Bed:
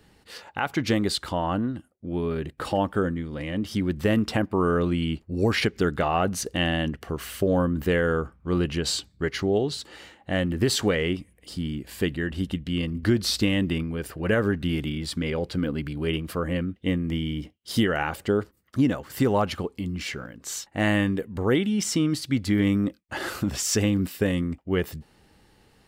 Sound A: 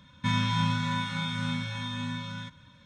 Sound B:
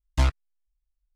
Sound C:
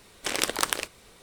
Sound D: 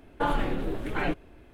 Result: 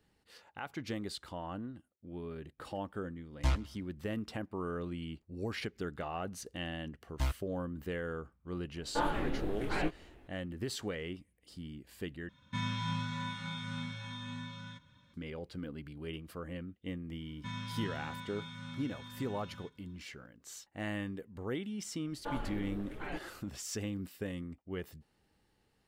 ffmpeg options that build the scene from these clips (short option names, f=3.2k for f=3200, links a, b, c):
-filter_complex "[2:a]asplit=2[a][b];[4:a]asplit=2[c][d];[1:a]asplit=2[e][f];[0:a]volume=-15.5dB[g];[a]aecho=1:1:103|206|309:0.075|0.033|0.0145[h];[c]flanger=delay=18.5:depth=7.2:speed=2.6[i];[g]asplit=2[j][k];[j]atrim=end=12.294[l];[e]atrim=end=2.85,asetpts=PTS-STARTPTS,volume=-9dB[m];[k]atrim=start=15.136[n];[h]atrim=end=1.15,asetpts=PTS-STARTPTS,volume=-8.5dB,afade=t=in:d=0.004:c=hsin,afade=t=out:st=1.146:d=0.004:c=hsin,adelay=3260[o];[b]atrim=end=1.15,asetpts=PTS-STARTPTS,volume=-11.5dB,afade=t=in:d=0.004:c=hsin,afade=t=out:st=1.146:d=0.004:c=hsin,adelay=7020[p];[i]atrim=end=1.53,asetpts=PTS-STARTPTS,volume=-2.5dB,afade=t=in:d=0.004:c=hsin,afade=t=out:st=1.526:d=0.004:c=hsin,adelay=8750[q];[f]atrim=end=2.85,asetpts=PTS-STARTPTS,volume=-14.5dB,afade=t=in:d=0.004:c=hsin,afade=t=out:st=2.846:d=0.004:c=hsin,adelay=17200[r];[d]atrim=end=1.53,asetpts=PTS-STARTPTS,volume=-13dB,afade=t=in:d=0.004:c=hsin,afade=t=out:st=1.526:d=0.004:c=hsin,adelay=22050[s];[l][m]acrossfade=d=0.004:c1=hsin:c2=hsin[t];[t][n]acrossfade=d=0.004:c1=hsin:c2=hsin[u];[u][o][p][q][r][s]amix=inputs=6:normalize=0"